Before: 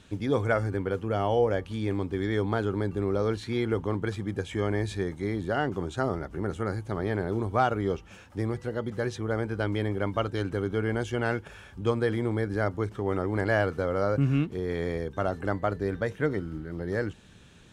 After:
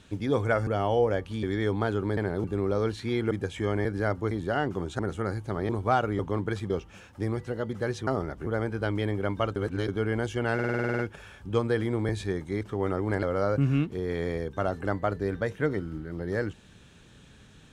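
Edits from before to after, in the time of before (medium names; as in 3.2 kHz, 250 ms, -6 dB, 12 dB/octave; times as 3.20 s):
0.67–1.07 s: delete
1.83–2.14 s: delete
3.75–4.26 s: move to 7.87 s
4.80–5.32 s: swap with 12.41–12.87 s
6.00–6.40 s: move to 9.24 s
7.10–7.37 s: move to 2.88 s
10.33–10.65 s: reverse
11.31 s: stutter 0.05 s, 10 plays
13.49–13.83 s: delete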